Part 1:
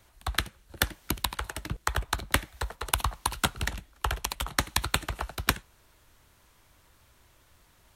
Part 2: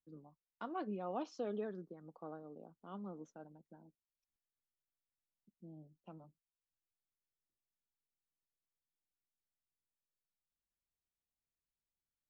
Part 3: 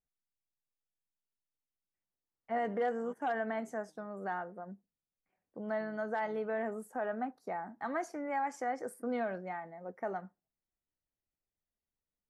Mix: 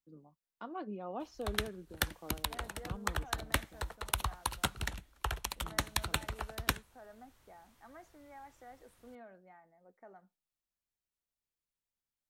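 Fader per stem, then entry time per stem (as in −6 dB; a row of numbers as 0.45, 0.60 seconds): −6.5, −0.5, −18.0 decibels; 1.20, 0.00, 0.00 seconds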